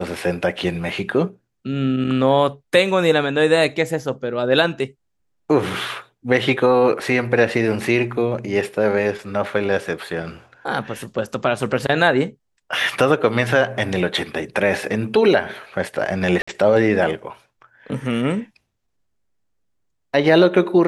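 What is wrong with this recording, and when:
16.42–16.48 gap 55 ms

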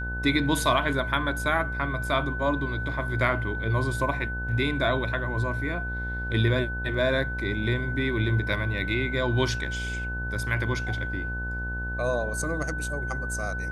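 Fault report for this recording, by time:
buzz 60 Hz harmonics 18 -33 dBFS
tone 1500 Hz -32 dBFS

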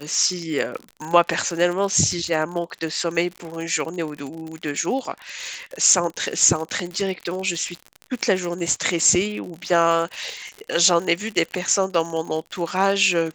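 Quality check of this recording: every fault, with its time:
crackle 69/s -28 dBFS

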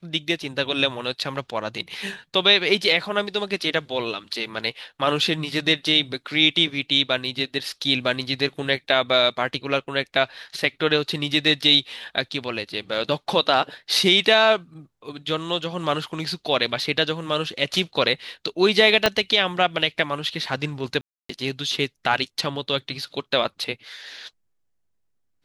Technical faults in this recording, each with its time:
19.06 pop -2 dBFS
21.01–21.29 gap 0.284 s

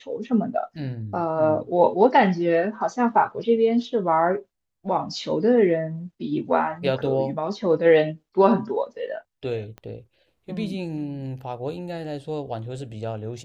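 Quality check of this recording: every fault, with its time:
9.78 pop -26 dBFS

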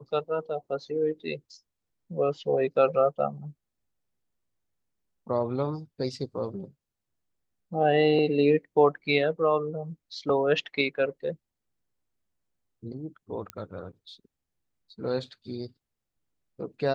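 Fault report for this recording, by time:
13.5 pop -19 dBFS

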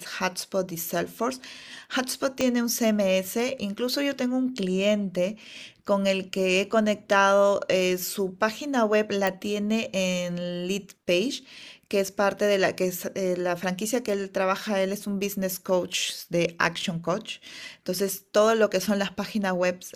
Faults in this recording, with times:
2.41 pop -11 dBFS
9.27 pop

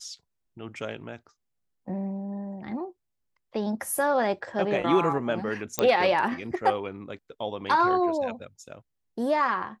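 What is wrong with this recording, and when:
5.79 pop -8 dBFS

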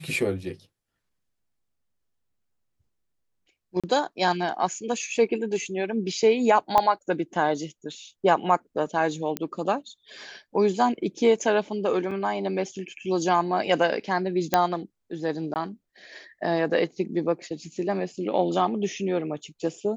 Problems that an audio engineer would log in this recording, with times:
3.8–3.84 gap 36 ms
6.78 pop -8 dBFS
9.37 pop -12 dBFS
12.11 gap 4.3 ms
14.54 pop -5 dBFS
15.54–15.56 gap 18 ms

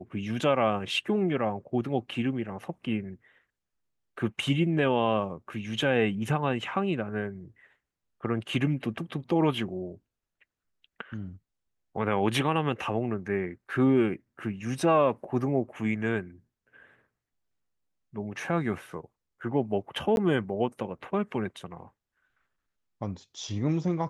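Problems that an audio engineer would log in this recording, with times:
20.16–20.17 gap 11 ms

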